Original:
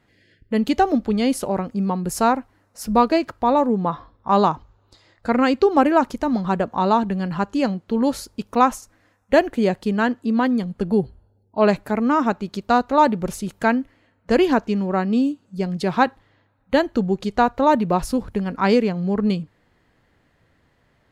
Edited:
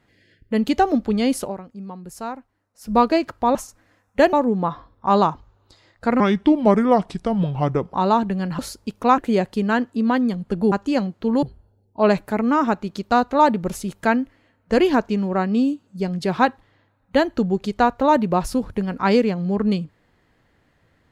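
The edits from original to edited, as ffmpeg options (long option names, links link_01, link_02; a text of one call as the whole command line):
ffmpeg -i in.wav -filter_complex "[0:a]asplit=11[link_01][link_02][link_03][link_04][link_05][link_06][link_07][link_08][link_09][link_10][link_11];[link_01]atrim=end=1.57,asetpts=PTS-STARTPTS,afade=type=out:start_time=1.41:duration=0.16:silence=0.237137[link_12];[link_02]atrim=start=1.57:end=2.81,asetpts=PTS-STARTPTS,volume=-12.5dB[link_13];[link_03]atrim=start=2.81:end=3.552,asetpts=PTS-STARTPTS,afade=type=in:duration=0.16:silence=0.237137[link_14];[link_04]atrim=start=8.688:end=9.472[link_15];[link_05]atrim=start=3.548:end=5.424[link_16];[link_06]atrim=start=5.42:end=6.74,asetpts=PTS-STARTPTS,asetrate=33516,aresample=44100[link_17];[link_07]atrim=start=6.736:end=7.392[link_18];[link_08]atrim=start=8.098:end=8.692[link_19];[link_09]atrim=start=9.468:end=11.012[link_20];[link_10]atrim=start=7.388:end=8.102[link_21];[link_11]atrim=start=11.008[link_22];[link_12][link_13][link_14]concat=n=3:v=0:a=1[link_23];[link_23][link_15]acrossfade=duration=0.004:curve1=hsin:curve2=hsin[link_24];[link_24][link_16]acrossfade=duration=0.004:curve1=hsin:curve2=hsin[link_25];[link_25][link_17]acrossfade=duration=0.004:curve1=hsin:curve2=hsin[link_26];[link_26][link_18]acrossfade=duration=0.004:curve1=hsin:curve2=hsin[link_27];[link_27][link_19]acrossfade=duration=0.004:curve1=hsin:curve2=hsin[link_28];[link_28][link_20]acrossfade=duration=0.004:curve1=hsin:curve2=hsin[link_29];[link_29][link_21]acrossfade=duration=0.004:curve1=hsin:curve2=hsin[link_30];[link_30][link_22]acrossfade=duration=0.004:curve1=hsin:curve2=hsin" out.wav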